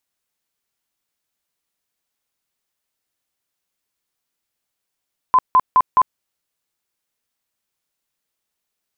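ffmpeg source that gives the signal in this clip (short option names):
-f lavfi -i "aevalsrc='0.376*sin(2*PI*1020*mod(t,0.21))*lt(mod(t,0.21),48/1020)':d=0.84:s=44100"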